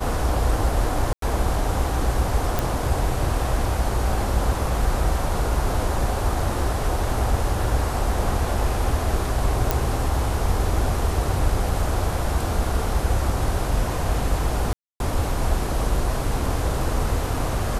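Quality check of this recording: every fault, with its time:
0:01.13–0:01.22: drop-out 93 ms
0:02.59: click
0:09.71: click
0:14.73–0:15.00: drop-out 271 ms

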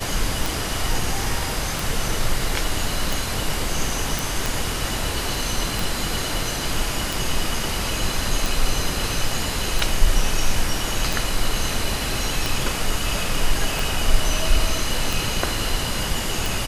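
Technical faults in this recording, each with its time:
scratch tick 45 rpm
0:04.19: click

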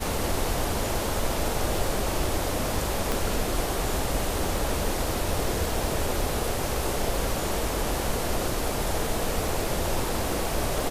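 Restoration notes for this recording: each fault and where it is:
surface crackle 22 per second −33 dBFS
0:03.12: click

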